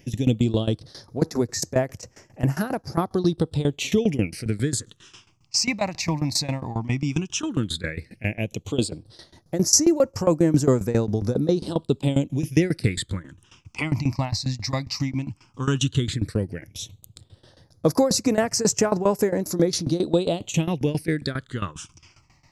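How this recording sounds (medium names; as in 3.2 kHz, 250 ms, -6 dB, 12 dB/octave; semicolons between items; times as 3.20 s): phasing stages 8, 0.12 Hz, lowest notch 420–3500 Hz; tremolo saw down 7.4 Hz, depth 90%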